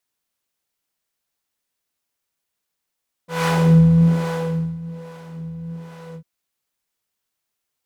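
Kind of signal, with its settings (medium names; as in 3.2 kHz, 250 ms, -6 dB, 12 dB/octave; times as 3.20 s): synth patch with filter wobble E3, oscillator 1 triangle, oscillator 2 saw, interval +19 st, oscillator 2 level -10.5 dB, sub -22 dB, noise -6.5 dB, filter bandpass, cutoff 140 Hz, Q 0.9, filter envelope 2.5 oct, attack 175 ms, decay 1.34 s, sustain -22 dB, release 0.08 s, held 2.87 s, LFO 1.2 Hz, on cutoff 1.4 oct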